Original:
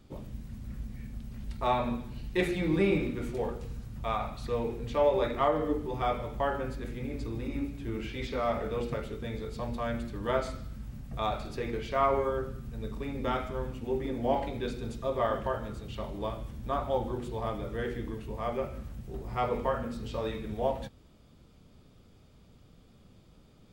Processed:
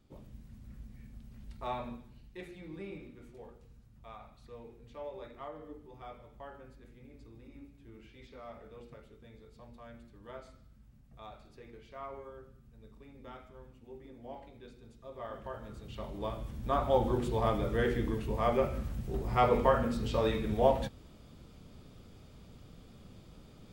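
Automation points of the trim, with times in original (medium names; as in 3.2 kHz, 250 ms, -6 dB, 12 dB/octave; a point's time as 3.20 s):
1.79 s -9.5 dB
2.39 s -18 dB
14.96 s -18 dB
15.83 s -6 dB
17.14 s +4 dB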